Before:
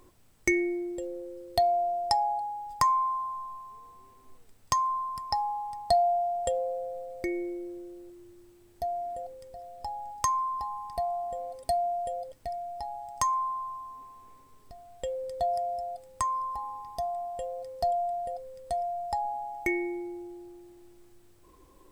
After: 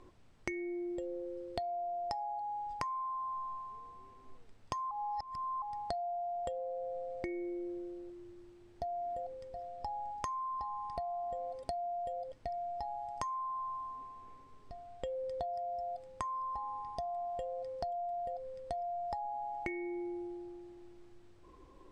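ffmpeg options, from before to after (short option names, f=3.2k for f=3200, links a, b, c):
-filter_complex "[0:a]asplit=3[a][b][c];[a]atrim=end=4.912[d];[b]atrim=start=4.908:end=5.622,asetpts=PTS-STARTPTS,areverse[e];[c]atrim=start=5.618[f];[d][e]acrossfade=d=0.004:c1=hsin:c2=hsin[g];[g][f]acrossfade=d=0.004:c1=hsin:c2=hsin,lowpass=5.7k,highshelf=f=4.2k:g=-6,acompressor=threshold=-36dB:ratio=10"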